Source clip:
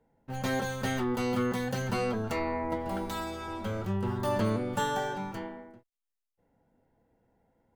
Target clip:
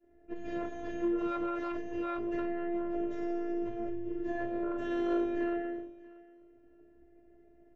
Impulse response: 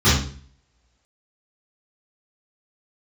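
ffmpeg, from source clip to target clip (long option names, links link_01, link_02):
-filter_complex "[0:a]equalizer=frequency=250:width_type=o:width=1:gain=-7,equalizer=frequency=500:width_type=o:width=1:gain=-4,equalizer=frequency=1000:width_type=o:width=1:gain=-3,equalizer=frequency=2000:width_type=o:width=1:gain=-6,equalizer=frequency=4000:width_type=o:width=1:gain=-12[link_01];[1:a]atrim=start_sample=2205[link_02];[link_01][link_02]afir=irnorm=-1:irlink=0,acompressor=threshold=-15dB:ratio=16,asplit=3[link_03][link_04][link_05];[link_03]bandpass=frequency=530:width_type=q:width=8,volume=0dB[link_06];[link_04]bandpass=frequency=1840:width_type=q:width=8,volume=-6dB[link_07];[link_05]bandpass=frequency=2480:width_type=q:width=8,volume=-9dB[link_08];[link_06][link_07][link_08]amix=inputs=3:normalize=0,equalizer=frequency=140:width=0.44:gain=8,aresample=16000,aeval=exprs='0.0891*sin(PI/2*1.41*val(0)/0.0891)':channel_layout=same,aresample=44100,afftfilt=real='hypot(re,im)*cos(PI*b)':imag='0':win_size=512:overlap=0.75,aecho=1:1:636|1272:0.0841|0.0126"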